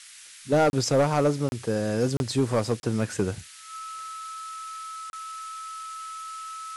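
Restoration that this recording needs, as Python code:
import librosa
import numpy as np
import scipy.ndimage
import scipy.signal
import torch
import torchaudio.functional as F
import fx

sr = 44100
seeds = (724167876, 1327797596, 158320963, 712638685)

y = fx.fix_declip(x, sr, threshold_db=-15.0)
y = fx.notch(y, sr, hz=1300.0, q=30.0)
y = fx.fix_interpolate(y, sr, at_s=(0.7, 1.49, 2.17, 2.8, 5.1), length_ms=31.0)
y = fx.noise_reduce(y, sr, print_start_s=0.0, print_end_s=0.5, reduce_db=24.0)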